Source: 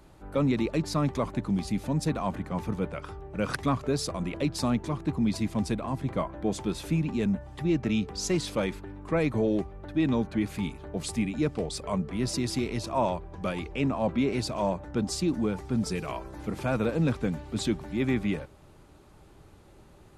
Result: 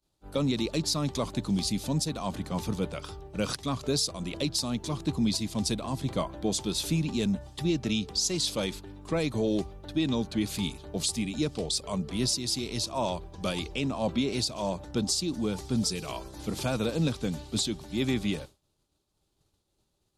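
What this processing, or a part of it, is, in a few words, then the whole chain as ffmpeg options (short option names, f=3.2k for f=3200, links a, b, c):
over-bright horn tweeter: -af "highshelf=f=2.8k:t=q:w=1.5:g=10.5,alimiter=limit=-17.5dB:level=0:latency=1:release=404,agate=range=-33dB:threshold=-38dB:ratio=3:detection=peak"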